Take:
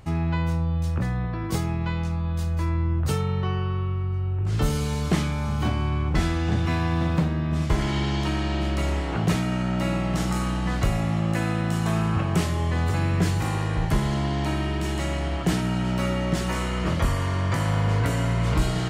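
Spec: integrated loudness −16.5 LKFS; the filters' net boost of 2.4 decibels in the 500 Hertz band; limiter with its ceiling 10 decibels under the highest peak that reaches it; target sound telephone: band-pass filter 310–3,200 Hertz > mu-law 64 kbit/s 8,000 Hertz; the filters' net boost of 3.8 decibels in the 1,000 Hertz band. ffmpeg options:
ffmpeg -i in.wav -af "equalizer=frequency=500:width_type=o:gain=3,equalizer=frequency=1000:width_type=o:gain=4,alimiter=limit=-20dB:level=0:latency=1,highpass=310,lowpass=3200,volume=17.5dB" -ar 8000 -c:a pcm_mulaw out.wav

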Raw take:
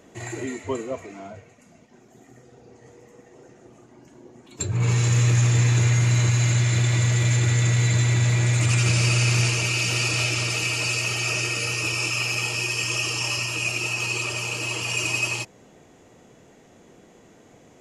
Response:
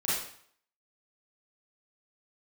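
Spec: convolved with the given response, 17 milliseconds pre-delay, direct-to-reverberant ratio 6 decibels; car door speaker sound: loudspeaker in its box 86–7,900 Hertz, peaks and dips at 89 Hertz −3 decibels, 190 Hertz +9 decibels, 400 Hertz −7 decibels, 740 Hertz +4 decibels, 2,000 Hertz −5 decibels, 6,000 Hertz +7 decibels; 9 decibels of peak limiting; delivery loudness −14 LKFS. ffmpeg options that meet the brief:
-filter_complex "[0:a]alimiter=limit=-18.5dB:level=0:latency=1,asplit=2[link_01][link_02];[1:a]atrim=start_sample=2205,adelay=17[link_03];[link_02][link_03]afir=irnorm=-1:irlink=0,volume=-14dB[link_04];[link_01][link_04]amix=inputs=2:normalize=0,highpass=86,equalizer=frequency=89:width_type=q:width=4:gain=-3,equalizer=frequency=190:width_type=q:width=4:gain=9,equalizer=frequency=400:width_type=q:width=4:gain=-7,equalizer=frequency=740:width_type=q:width=4:gain=4,equalizer=frequency=2000:width_type=q:width=4:gain=-5,equalizer=frequency=6000:width_type=q:width=4:gain=7,lowpass=frequency=7900:width=0.5412,lowpass=frequency=7900:width=1.3066,volume=11dB"

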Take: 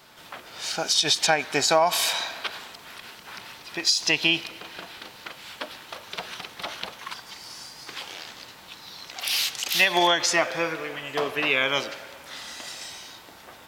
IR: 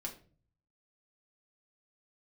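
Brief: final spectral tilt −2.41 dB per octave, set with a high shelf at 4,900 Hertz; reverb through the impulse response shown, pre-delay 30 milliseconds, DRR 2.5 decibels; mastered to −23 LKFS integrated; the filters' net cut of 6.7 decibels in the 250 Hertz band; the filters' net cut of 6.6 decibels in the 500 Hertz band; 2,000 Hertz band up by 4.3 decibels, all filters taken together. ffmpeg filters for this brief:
-filter_complex "[0:a]equalizer=frequency=250:width_type=o:gain=-6,equalizer=frequency=500:width_type=o:gain=-8.5,equalizer=frequency=2000:width_type=o:gain=7,highshelf=frequency=4900:gain=-5.5,asplit=2[link_01][link_02];[1:a]atrim=start_sample=2205,adelay=30[link_03];[link_02][link_03]afir=irnorm=-1:irlink=0,volume=-1dB[link_04];[link_01][link_04]amix=inputs=2:normalize=0,volume=-2dB"

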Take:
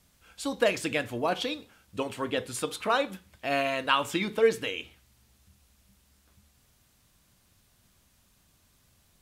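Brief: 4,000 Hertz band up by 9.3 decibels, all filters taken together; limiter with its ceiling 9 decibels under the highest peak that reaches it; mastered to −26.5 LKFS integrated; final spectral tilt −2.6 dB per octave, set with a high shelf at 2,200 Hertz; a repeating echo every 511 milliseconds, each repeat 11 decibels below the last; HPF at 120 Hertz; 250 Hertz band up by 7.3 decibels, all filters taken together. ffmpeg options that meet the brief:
ffmpeg -i in.wav -af "highpass=120,equalizer=frequency=250:width_type=o:gain=9,highshelf=frequency=2200:gain=8,equalizer=frequency=4000:width_type=o:gain=5,alimiter=limit=-13dB:level=0:latency=1,aecho=1:1:511|1022|1533:0.282|0.0789|0.0221,volume=-0.5dB" out.wav

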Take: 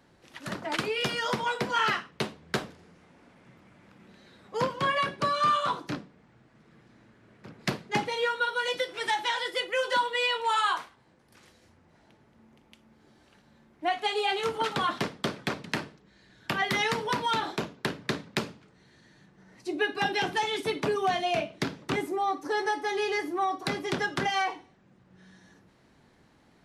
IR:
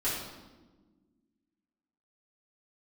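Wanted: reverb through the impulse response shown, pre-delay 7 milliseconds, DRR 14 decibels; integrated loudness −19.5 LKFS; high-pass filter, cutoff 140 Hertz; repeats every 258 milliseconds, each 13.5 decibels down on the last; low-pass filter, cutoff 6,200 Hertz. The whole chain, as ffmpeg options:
-filter_complex "[0:a]highpass=140,lowpass=6200,aecho=1:1:258|516:0.211|0.0444,asplit=2[link_01][link_02];[1:a]atrim=start_sample=2205,adelay=7[link_03];[link_02][link_03]afir=irnorm=-1:irlink=0,volume=-21.5dB[link_04];[link_01][link_04]amix=inputs=2:normalize=0,volume=9.5dB"

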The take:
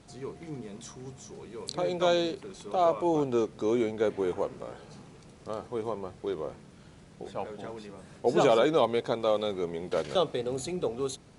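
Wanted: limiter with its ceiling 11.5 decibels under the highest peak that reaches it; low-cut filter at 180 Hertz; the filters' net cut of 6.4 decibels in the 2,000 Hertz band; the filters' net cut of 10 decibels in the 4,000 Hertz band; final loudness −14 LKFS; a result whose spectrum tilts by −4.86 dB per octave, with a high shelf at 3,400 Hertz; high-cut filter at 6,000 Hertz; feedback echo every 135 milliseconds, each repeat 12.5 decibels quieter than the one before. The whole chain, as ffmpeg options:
ffmpeg -i in.wav -af "highpass=180,lowpass=6000,equalizer=frequency=2000:width_type=o:gain=-5.5,highshelf=frequency=3400:gain=-8,equalizer=frequency=4000:width_type=o:gain=-4.5,alimiter=level_in=0.5dB:limit=-24dB:level=0:latency=1,volume=-0.5dB,aecho=1:1:135|270|405:0.237|0.0569|0.0137,volume=21.5dB" out.wav

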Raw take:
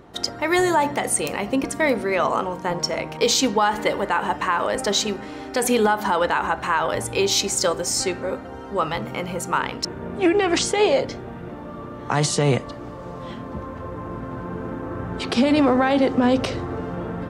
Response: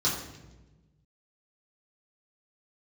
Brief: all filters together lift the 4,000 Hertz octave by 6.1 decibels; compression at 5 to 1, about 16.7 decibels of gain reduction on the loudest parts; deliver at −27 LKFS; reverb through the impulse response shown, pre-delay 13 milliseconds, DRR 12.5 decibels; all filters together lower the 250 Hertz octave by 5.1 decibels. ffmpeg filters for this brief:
-filter_complex "[0:a]equalizer=frequency=250:width_type=o:gain=-6.5,equalizer=frequency=4000:width_type=o:gain=7.5,acompressor=threshold=-31dB:ratio=5,asplit=2[link_01][link_02];[1:a]atrim=start_sample=2205,adelay=13[link_03];[link_02][link_03]afir=irnorm=-1:irlink=0,volume=-22.5dB[link_04];[link_01][link_04]amix=inputs=2:normalize=0,volume=6dB"

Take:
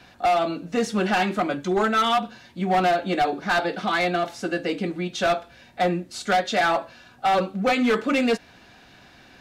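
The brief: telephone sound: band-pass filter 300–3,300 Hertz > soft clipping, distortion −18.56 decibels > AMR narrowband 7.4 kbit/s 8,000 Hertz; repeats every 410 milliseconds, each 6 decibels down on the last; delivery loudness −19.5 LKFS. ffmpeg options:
ffmpeg -i in.wav -af "highpass=300,lowpass=3300,aecho=1:1:410|820|1230|1640|2050|2460:0.501|0.251|0.125|0.0626|0.0313|0.0157,asoftclip=threshold=-15dB,volume=7dB" -ar 8000 -c:a libopencore_amrnb -b:a 7400 out.amr

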